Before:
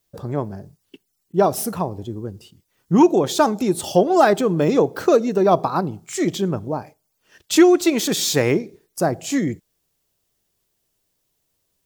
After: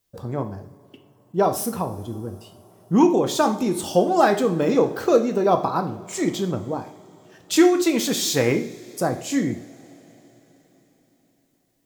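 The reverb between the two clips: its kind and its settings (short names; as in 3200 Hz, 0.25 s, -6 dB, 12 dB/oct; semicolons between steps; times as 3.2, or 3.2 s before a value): two-slope reverb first 0.47 s, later 4.6 s, from -22 dB, DRR 5.5 dB; gain -3 dB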